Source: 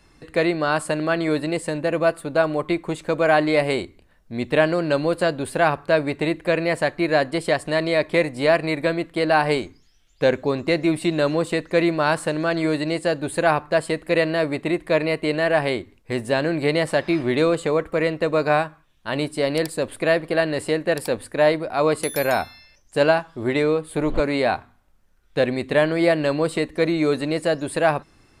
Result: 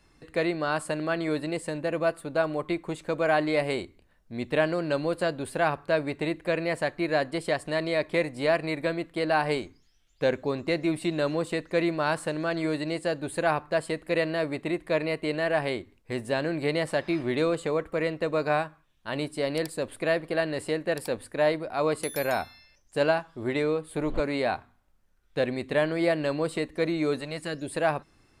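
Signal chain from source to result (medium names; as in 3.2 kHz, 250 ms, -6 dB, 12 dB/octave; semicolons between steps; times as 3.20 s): 27.19–27.71 s: peaking EQ 200 Hz -> 1.4 kHz -13 dB 0.77 oct; trim -6.5 dB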